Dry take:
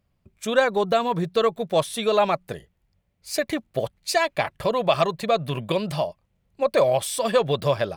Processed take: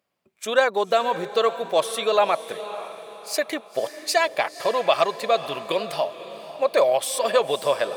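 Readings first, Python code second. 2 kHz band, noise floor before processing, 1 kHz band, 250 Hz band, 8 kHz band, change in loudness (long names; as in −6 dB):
+1.5 dB, −71 dBFS, +1.5 dB, −7.0 dB, +1.5 dB, +0.5 dB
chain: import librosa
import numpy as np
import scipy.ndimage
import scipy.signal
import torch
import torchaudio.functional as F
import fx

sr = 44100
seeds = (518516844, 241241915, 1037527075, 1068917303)

y = scipy.signal.sosfilt(scipy.signal.butter(2, 400.0, 'highpass', fs=sr, output='sos'), x)
y = fx.echo_diffused(y, sr, ms=530, feedback_pct=42, wet_db=-13)
y = y * 10.0 ** (1.5 / 20.0)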